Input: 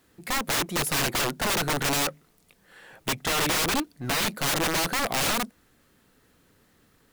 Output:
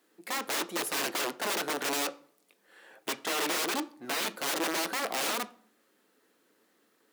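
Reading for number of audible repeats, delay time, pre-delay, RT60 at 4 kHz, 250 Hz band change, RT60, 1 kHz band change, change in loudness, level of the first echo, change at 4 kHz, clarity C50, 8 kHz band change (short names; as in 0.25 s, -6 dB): none, none, 9 ms, 0.35 s, -6.5 dB, 0.55 s, -5.0 dB, -5.5 dB, none, -6.0 dB, 19.5 dB, -6.0 dB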